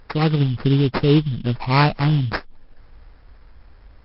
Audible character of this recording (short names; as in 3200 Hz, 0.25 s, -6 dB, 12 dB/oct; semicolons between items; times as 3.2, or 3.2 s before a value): aliases and images of a low sample rate 3300 Hz, jitter 20%; MP3